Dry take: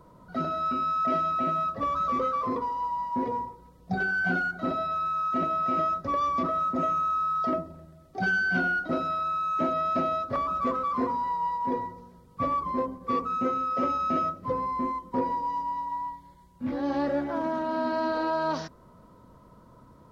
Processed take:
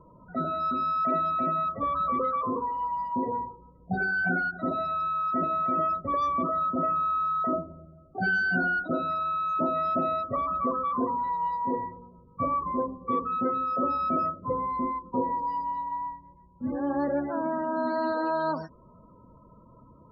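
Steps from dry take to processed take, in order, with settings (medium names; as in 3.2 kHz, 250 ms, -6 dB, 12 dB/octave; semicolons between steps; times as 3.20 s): loudest bins only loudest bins 32; endings held to a fixed fall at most 370 dB/s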